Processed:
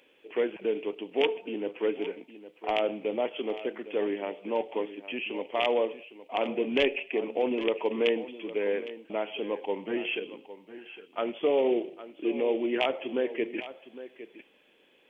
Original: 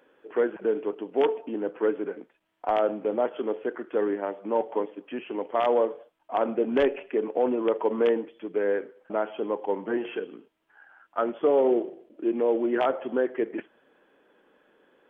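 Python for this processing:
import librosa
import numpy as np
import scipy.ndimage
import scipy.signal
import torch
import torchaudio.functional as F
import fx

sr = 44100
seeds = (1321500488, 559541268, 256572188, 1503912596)

y = fx.high_shelf_res(x, sr, hz=1900.0, db=8.0, q=3.0)
y = y + 10.0 ** (-14.5 / 20.0) * np.pad(y, (int(809 * sr / 1000.0), 0))[:len(y)]
y = y * 10.0 ** (-3.0 / 20.0)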